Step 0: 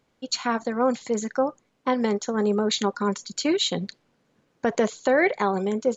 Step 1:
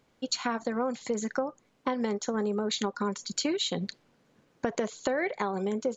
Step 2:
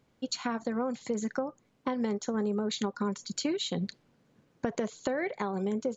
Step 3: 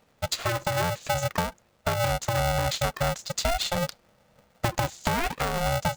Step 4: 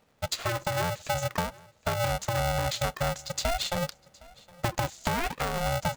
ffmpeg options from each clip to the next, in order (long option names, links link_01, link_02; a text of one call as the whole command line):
ffmpeg -i in.wav -af "acompressor=threshold=-28dB:ratio=6,volume=1.5dB" out.wav
ffmpeg -i in.wav -af "equalizer=frequency=110:width=0.43:gain=6.5,volume=-4dB" out.wav
ffmpeg -i in.wav -af "aeval=exprs='val(0)*sgn(sin(2*PI*350*n/s))':channel_layout=same,volume=5dB" out.wav
ffmpeg -i in.wav -af "aecho=1:1:764|1528:0.0668|0.012,volume=-2.5dB" out.wav